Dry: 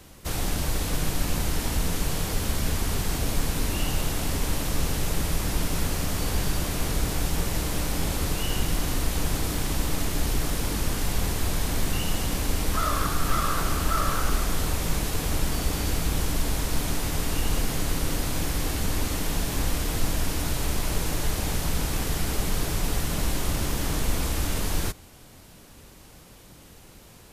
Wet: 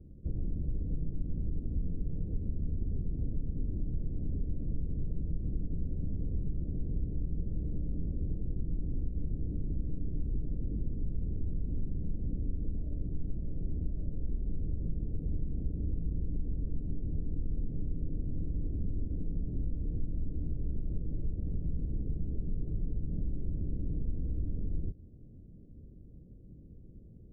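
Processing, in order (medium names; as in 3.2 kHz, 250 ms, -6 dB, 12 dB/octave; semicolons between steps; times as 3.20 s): compression 4:1, threshold -29 dBFS, peak gain reduction 11 dB; Gaussian low-pass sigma 25 samples; trim +1 dB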